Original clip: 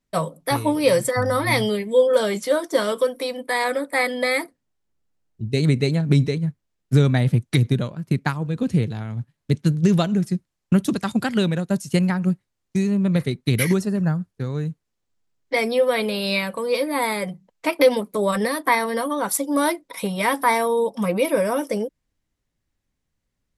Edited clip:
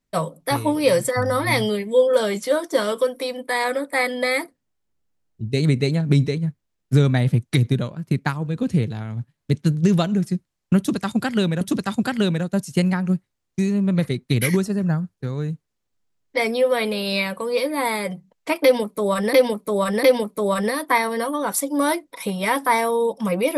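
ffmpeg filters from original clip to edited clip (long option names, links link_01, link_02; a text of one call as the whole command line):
ffmpeg -i in.wav -filter_complex "[0:a]asplit=4[link_01][link_02][link_03][link_04];[link_01]atrim=end=11.612[link_05];[link_02]atrim=start=10.778:end=18.502[link_06];[link_03]atrim=start=17.798:end=18.502[link_07];[link_04]atrim=start=17.798[link_08];[link_05][link_06]acrossfade=duration=0.004:curve1=hsin:curve2=hsin[link_09];[link_09][link_07]acrossfade=duration=0.004:curve1=hsin:curve2=hsin[link_10];[link_10][link_08]acrossfade=duration=0.004:curve1=hsin:curve2=hsin" out.wav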